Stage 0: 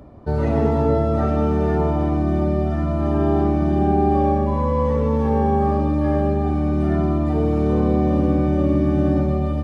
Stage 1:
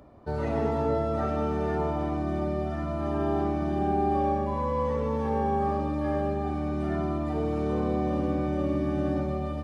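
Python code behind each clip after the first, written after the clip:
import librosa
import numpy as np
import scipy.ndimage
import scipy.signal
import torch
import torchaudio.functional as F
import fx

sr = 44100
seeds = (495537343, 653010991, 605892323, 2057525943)

y = fx.low_shelf(x, sr, hz=390.0, db=-8.0)
y = F.gain(torch.from_numpy(y), -4.0).numpy()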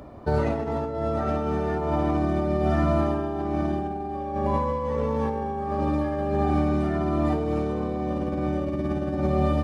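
y = fx.over_compress(x, sr, threshold_db=-30.0, ratio=-0.5)
y = F.gain(torch.from_numpy(y), 6.0).numpy()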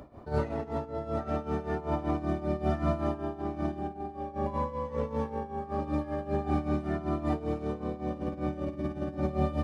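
y = x * (1.0 - 0.77 / 2.0 + 0.77 / 2.0 * np.cos(2.0 * np.pi * 5.2 * (np.arange(len(x)) / sr)))
y = F.gain(torch.from_numpy(y), -3.5).numpy()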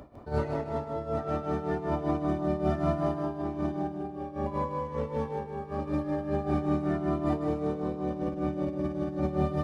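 y = fx.echo_feedback(x, sr, ms=154, feedback_pct=32, wet_db=-6.0)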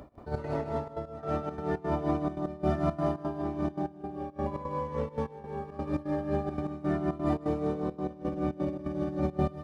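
y = fx.step_gate(x, sr, bpm=171, pattern='x.xx.xxxxx.x..xx', floor_db=-12.0, edge_ms=4.5)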